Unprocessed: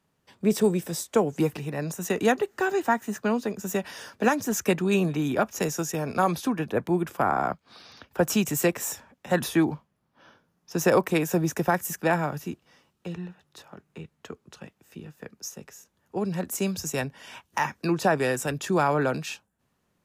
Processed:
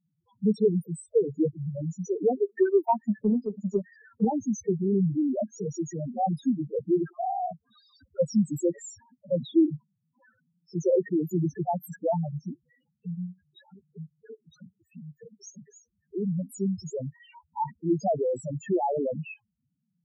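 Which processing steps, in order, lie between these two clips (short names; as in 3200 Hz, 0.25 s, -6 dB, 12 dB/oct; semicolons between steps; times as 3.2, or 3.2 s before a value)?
loudest bins only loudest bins 2; 2.49–4.25 transient shaper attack +6 dB, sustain -5 dB; gain +3 dB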